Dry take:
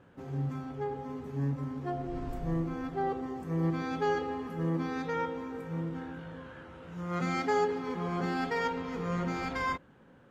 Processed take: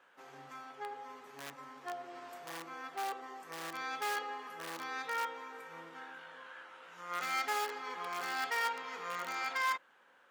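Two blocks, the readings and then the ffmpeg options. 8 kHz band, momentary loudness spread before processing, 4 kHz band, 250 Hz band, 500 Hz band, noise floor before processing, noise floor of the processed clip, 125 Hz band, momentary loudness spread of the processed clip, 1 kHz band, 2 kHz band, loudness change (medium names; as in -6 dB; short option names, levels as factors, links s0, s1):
no reading, 9 LU, +3.5 dB, -21.5 dB, -12.5 dB, -58 dBFS, -65 dBFS, -30.5 dB, 16 LU, -2.5 dB, +1.0 dB, -5.0 dB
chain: -filter_complex "[0:a]asplit=2[s0][s1];[s1]aeval=exprs='(mod(17.8*val(0)+1,2)-1)/17.8':c=same,volume=0.282[s2];[s0][s2]amix=inputs=2:normalize=0,highpass=1000"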